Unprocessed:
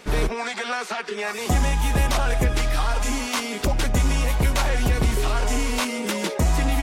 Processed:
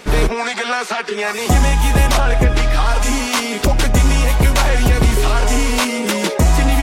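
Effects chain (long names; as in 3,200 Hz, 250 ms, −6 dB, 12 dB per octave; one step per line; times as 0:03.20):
0:02.19–0:02.85: high-shelf EQ 5,800 Hz → 9,300 Hz −11 dB
level +7.5 dB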